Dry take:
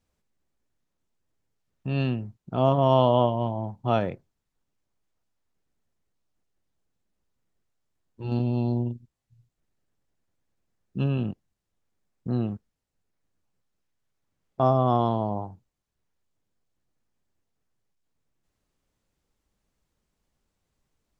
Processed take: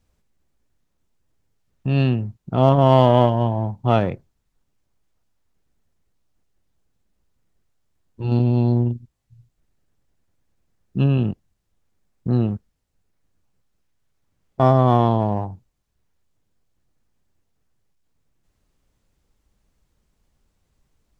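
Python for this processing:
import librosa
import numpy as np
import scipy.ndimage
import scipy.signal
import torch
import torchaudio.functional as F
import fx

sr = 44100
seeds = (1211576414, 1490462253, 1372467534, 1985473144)

p1 = fx.low_shelf(x, sr, hz=110.0, db=8.0)
p2 = fx.clip_asym(p1, sr, top_db=-28.0, bottom_db=-8.0)
p3 = p1 + (p2 * librosa.db_to_amplitude(-3.0))
y = p3 * librosa.db_to_amplitude(1.0)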